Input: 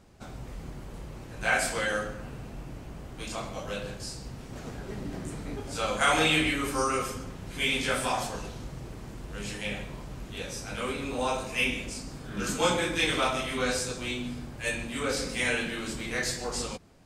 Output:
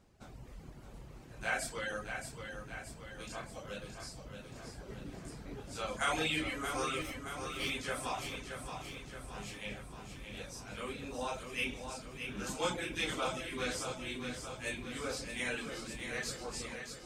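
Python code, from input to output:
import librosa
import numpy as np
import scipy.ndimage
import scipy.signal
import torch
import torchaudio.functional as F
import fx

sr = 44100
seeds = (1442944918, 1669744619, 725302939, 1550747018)

y = fx.lower_of_two(x, sr, delay_ms=0.33, at=(7.01, 7.7))
y = fx.dereverb_blind(y, sr, rt60_s=0.68)
y = fx.echo_feedback(y, sr, ms=624, feedback_pct=58, wet_db=-7.0)
y = y * librosa.db_to_amplitude(-8.5)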